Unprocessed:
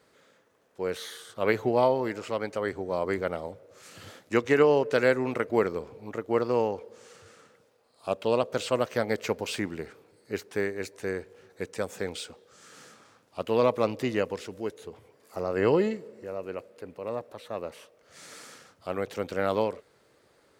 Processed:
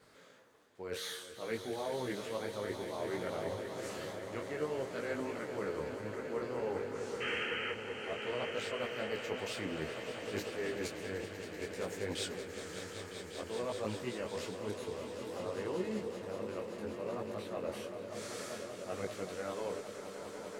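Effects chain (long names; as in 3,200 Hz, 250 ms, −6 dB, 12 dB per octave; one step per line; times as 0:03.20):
reversed playback
downward compressor, threshold −38 dBFS, peak gain reduction 20.5 dB
reversed playback
sound drawn into the spectrogram noise, 0:07.20–0:07.72, 1,200–3,200 Hz −39 dBFS
tape wow and flutter 18 cents
on a send: echo that builds up and dies away 192 ms, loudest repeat 5, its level −11 dB
on the sum: micro pitch shift up and down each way 20 cents
level +4.5 dB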